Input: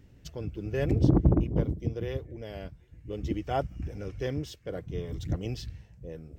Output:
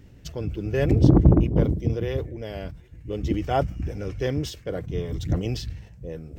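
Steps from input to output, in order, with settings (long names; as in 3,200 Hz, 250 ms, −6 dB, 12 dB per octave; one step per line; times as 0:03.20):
level that may fall only so fast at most 120 dB per second
level +6 dB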